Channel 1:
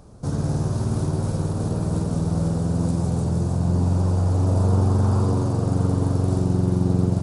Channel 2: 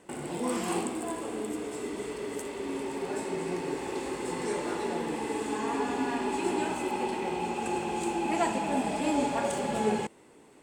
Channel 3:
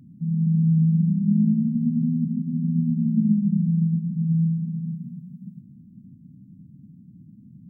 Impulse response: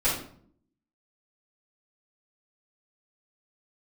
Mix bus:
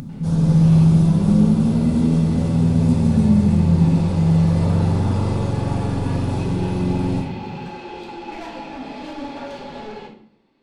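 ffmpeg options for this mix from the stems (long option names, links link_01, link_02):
-filter_complex "[0:a]equalizer=frequency=3300:width_type=o:width=0.77:gain=8.5,volume=-10dB,asplit=2[link_01][link_02];[link_02]volume=-4dB[link_03];[1:a]highshelf=frequency=6200:width_type=q:width=3:gain=-14,dynaudnorm=framelen=120:gausssize=13:maxgain=10dB,asoftclip=type=tanh:threshold=-20dB,volume=-17dB,asplit=2[link_04][link_05];[link_05]volume=-6.5dB[link_06];[2:a]acompressor=mode=upward:threshold=-27dB:ratio=2.5,volume=3dB,asplit=2[link_07][link_08];[link_08]volume=-22.5dB[link_09];[3:a]atrim=start_sample=2205[link_10];[link_03][link_06][link_09]amix=inputs=3:normalize=0[link_11];[link_11][link_10]afir=irnorm=-1:irlink=0[link_12];[link_01][link_04][link_07][link_12]amix=inputs=4:normalize=0"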